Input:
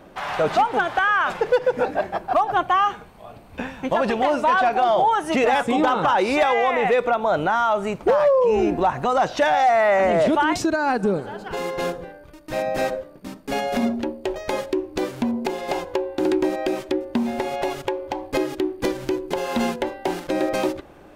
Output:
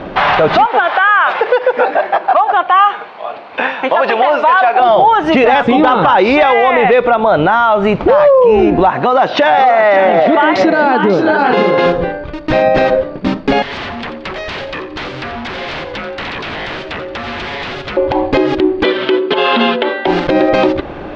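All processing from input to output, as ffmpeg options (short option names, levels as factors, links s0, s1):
-filter_complex "[0:a]asettb=1/sr,asplit=3[s0][s1][s2];[s0]atrim=end=0.664[s3];[s1]atrim=start=0.66:end=4.8,asetpts=PTS-STARTPTS,afade=t=in:d=0.004:c=qsin,afade=t=out:st=4.136:d=0.004:c=qsin,highpass=600,equalizer=f=9400:w=0.43:g=-6.5[s4];[s2]atrim=start=4.796[s5];[s3][s4]acrossfade=d=0.004:c1=hsin:c2=qsin[s6];[s6][s5]acrossfade=d=0.004:c1=qsin:c2=hsin,asettb=1/sr,asplit=3[s7][s8][s9];[s7]atrim=end=8.894[s10];[s8]atrim=start=8.89:end=11.86,asetpts=PTS-STARTPTS,afade=t=in:d=0.004:c=qsin,afade=t=out:st=2.966:d=0.004:c=qsin,highpass=200,lowpass=6300,aecho=1:1:541|573:0.282|0.299,atrim=end_sample=130977[s11];[s9]atrim=start=11.856[s12];[s10][s11]acrossfade=d=0.004:c1=hsin:c2=qsin[s13];[s13][s12]acrossfade=d=0.004:c1=qsin:c2=hsin,asettb=1/sr,asplit=3[s14][s15][s16];[s14]atrim=end=13.624[s17];[s15]atrim=start=13.62:end=17.97,asetpts=PTS-STARTPTS,afade=t=in:d=0.004:c=qsin,afade=t=out:st=4.346:d=0.004:c=qsin,aeval=exprs='0.0376*(abs(mod(val(0)/0.0376+3,4)-2)-1)':c=same,acrossover=split=590|1800[s18][s19][s20];[s18]acompressor=threshold=0.00355:ratio=4[s21];[s19]acompressor=threshold=0.00282:ratio=4[s22];[s20]acompressor=threshold=0.00562:ratio=4[s23];[s21][s22][s23]amix=inputs=3:normalize=0,aecho=1:1:88|176|264|352:0.237|0.0901|0.0342|0.013,atrim=end_sample=191835[s24];[s16]atrim=start=17.966[s25];[s17][s24]acrossfade=d=0.004:c1=hsin:c2=qsin[s26];[s26][s25]acrossfade=d=0.004:c1=qsin:c2=hsin,asettb=1/sr,asplit=3[s27][s28][s29];[s27]atrim=end=18.834[s30];[s28]atrim=start=18.83:end=20.06,asetpts=PTS-STARTPTS,afade=t=in:d=0.004:c=qsin,afade=t=out:st=1.226:d=0.004:c=qsin,highpass=350,equalizer=f=800:t=q:w=4:g=-6,equalizer=f=1300:t=q:w=4:g=5,equalizer=f=3200:t=q:w=4:g=8,lowpass=f=4500:w=0.5412,lowpass=f=4500:w=1.3066,aecho=1:1:4.6:0.5,atrim=end_sample=54243[s31];[s29]atrim=start=20.056[s32];[s30][s31]acrossfade=d=0.004:c1=hsin:c2=qsin[s33];[s33][s32]acrossfade=d=0.004:c1=qsin:c2=hsin,lowpass=f=4100:w=0.5412,lowpass=f=4100:w=1.3066,acompressor=threshold=0.0501:ratio=6,alimiter=level_in=11.9:limit=0.891:release=50:level=0:latency=1,volume=0.891"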